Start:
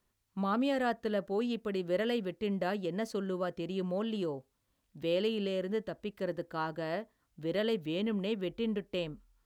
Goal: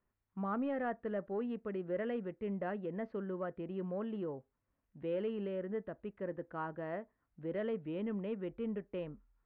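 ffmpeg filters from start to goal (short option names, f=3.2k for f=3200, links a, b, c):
-af "asoftclip=type=tanh:threshold=-21.5dB,lowpass=f=2.1k:w=0.5412,lowpass=f=2.1k:w=1.3066,volume=-4.5dB"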